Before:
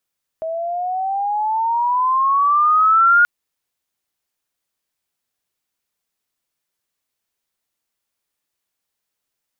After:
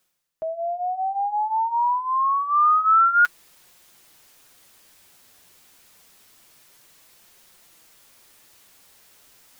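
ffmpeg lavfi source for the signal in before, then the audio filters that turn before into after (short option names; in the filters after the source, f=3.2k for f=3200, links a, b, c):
-f lavfi -i "aevalsrc='pow(10,(-8.5+13*(t/2.83-1))/20)*sin(2*PI*640*2.83/(14*log(2)/12)*(exp(14*log(2)/12*t/2.83)-1))':d=2.83:s=44100"
-af "areverse,acompressor=mode=upward:threshold=-27dB:ratio=2.5,areverse,flanger=delay=5.5:depth=6:regen=-32:speed=0.27:shape=sinusoidal"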